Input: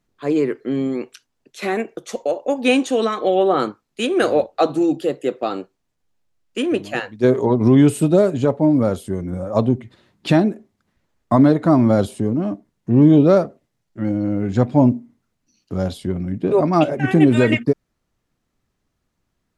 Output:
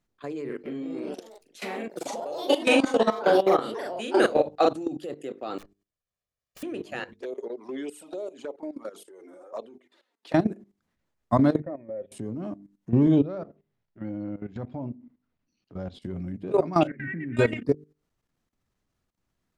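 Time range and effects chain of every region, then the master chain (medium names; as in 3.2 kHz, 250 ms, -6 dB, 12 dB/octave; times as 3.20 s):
0.45–4.73 s: ever faster or slower copies 186 ms, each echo +3 st, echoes 3, each echo -6 dB + doubling 41 ms -2 dB
5.58–6.63 s: comb filter that takes the minimum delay 1.7 ms + integer overflow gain 31.5 dB
7.13–10.34 s: high-pass 360 Hz 24 dB/octave + touch-sensitive flanger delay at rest 4.9 ms, full sweep at -14 dBFS + compression 2:1, threshold -29 dBFS
11.60–12.12 s: cascade formant filter e + bass shelf 200 Hz -3.5 dB
13.21–16.02 s: low-pass 3.5 kHz + compression 1.5:1, threshold -36 dBFS
16.87–17.37 s: FFT filter 270 Hz 0 dB, 850 Hz -28 dB, 1.9 kHz +11 dB, 4 kHz -29 dB + compression 3:1, threshold -27 dBFS
whole clip: hum notches 50/100/150/200/250/300/350/400/450 Hz; level held to a coarse grid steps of 15 dB; trim -3 dB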